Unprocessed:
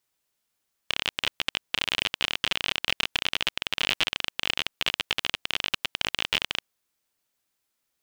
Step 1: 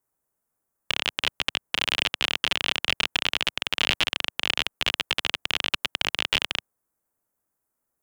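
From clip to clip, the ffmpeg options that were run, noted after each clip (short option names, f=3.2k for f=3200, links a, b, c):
-filter_complex "[0:a]highshelf=f=10k:g=-4,acrossover=split=120|1600|7400[a][b][c][d];[c]acrusher=bits=6:mix=0:aa=0.000001[e];[a][b][e][d]amix=inputs=4:normalize=0,volume=2.5dB"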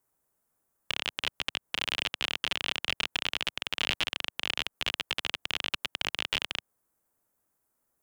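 -af "alimiter=limit=-14.5dB:level=0:latency=1:release=120,volume=2.5dB"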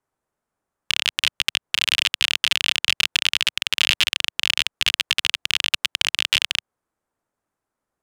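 -af "crystalizer=i=7:c=0,adynamicsmooth=sensitivity=6.5:basefreq=1.9k,volume=1dB"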